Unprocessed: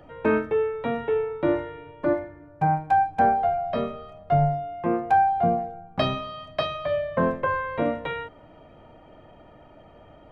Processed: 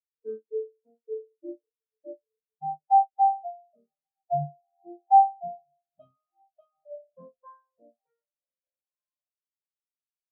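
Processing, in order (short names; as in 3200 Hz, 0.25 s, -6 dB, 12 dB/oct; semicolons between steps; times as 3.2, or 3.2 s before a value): diffused feedback echo 1.413 s, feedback 51%, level -12 dB; spectral expander 4:1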